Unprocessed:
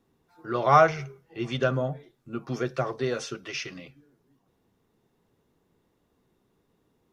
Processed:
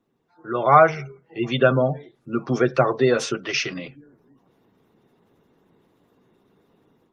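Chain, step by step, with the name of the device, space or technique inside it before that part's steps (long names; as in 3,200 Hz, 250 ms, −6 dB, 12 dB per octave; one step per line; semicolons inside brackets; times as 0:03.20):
noise-suppressed video call (high-pass filter 130 Hz 12 dB per octave; gate on every frequency bin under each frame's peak −30 dB strong; automatic gain control gain up to 11 dB; Opus 24 kbit/s 48,000 Hz)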